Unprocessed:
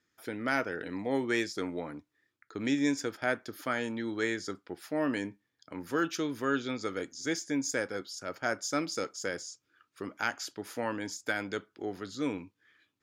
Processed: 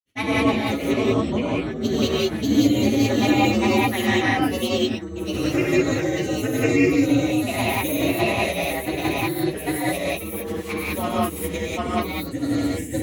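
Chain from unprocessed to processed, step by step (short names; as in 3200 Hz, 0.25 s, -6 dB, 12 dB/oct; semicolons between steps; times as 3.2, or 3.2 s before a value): inharmonic rescaling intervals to 125%; low shelf 130 Hz +5.5 dB; in parallel at +3 dB: compressor, threshold -40 dBFS, peak gain reduction 15 dB; on the sum: grains 0.1 s, grains 20/s, spray 0.99 s, pitch spread up and down by 0 st; non-linear reverb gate 0.22 s rising, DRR -5.5 dB; gain +5.5 dB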